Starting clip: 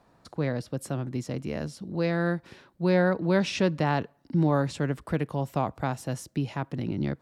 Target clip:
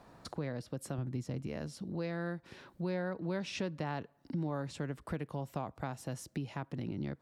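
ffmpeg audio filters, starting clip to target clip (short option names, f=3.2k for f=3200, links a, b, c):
-filter_complex "[0:a]asettb=1/sr,asplit=3[a][b][c];[a]atrim=end=0.984[d];[b]atrim=start=0.98:end=1.47,asetpts=PTS-STARTPTS,afade=t=in:d=0.004:c=qsin,afade=t=out:st=0.486:d=0.004:c=qsin,lowshelf=f=170:g=9.5[e];[c]atrim=start=1.466[f];[d][e]acrossfade=d=0.004:c1=hsin:c2=qsin[g];[g][f]acrossfade=d=0.004:c1=qsin:c2=hsin,acompressor=threshold=-46dB:ratio=2.5,volume=4dB"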